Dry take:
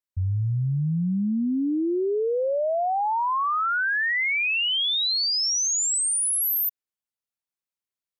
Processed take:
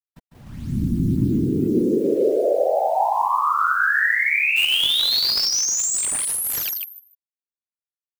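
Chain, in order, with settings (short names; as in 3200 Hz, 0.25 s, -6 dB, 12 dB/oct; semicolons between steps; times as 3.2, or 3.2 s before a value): elliptic high-pass 150 Hz, stop band 40 dB; de-hum 370.1 Hz, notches 12; in parallel at +0.5 dB: limiter -26.5 dBFS, peak gain reduction 8 dB; on the sum: bit-crush 8-bit; whisperiser; 4.56–5.46 companded quantiser 4-bit; on a send: feedback echo 0.151 s, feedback 19%, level -5 dB; on the sum: slew limiter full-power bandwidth 730 Hz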